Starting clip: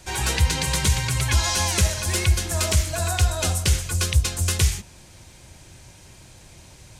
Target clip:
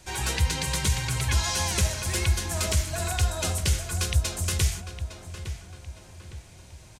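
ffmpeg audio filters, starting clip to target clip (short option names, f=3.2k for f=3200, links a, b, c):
-filter_complex "[0:a]asplit=2[a][b];[b]adelay=859,lowpass=f=3k:p=1,volume=-10dB,asplit=2[c][d];[d]adelay=859,lowpass=f=3k:p=1,volume=0.44,asplit=2[e][f];[f]adelay=859,lowpass=f=3k:p=1,volume=0.44,asplit=2[g][h];[h]adelay=859,lowpass=f=3k:p=1,volume=0.44,asplit=2[i][j];[j]adelay=859,lowpass=f=3k:p=1,volume=0.44[k];[a][c][e][g][i][k]amix=inputs=6:normalize=0,volume=-4.5dB"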